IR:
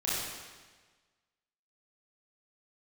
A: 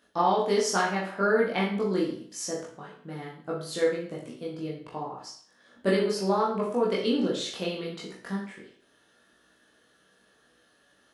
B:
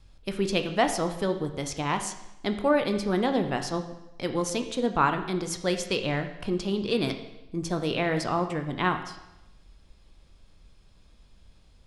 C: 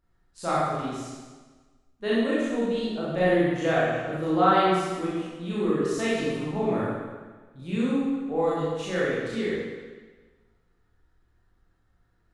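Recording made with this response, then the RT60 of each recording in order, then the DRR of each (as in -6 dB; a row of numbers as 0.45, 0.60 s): C; 0.50, 0.90, 1.4 s; -5.5, 6.5, -9.0 dB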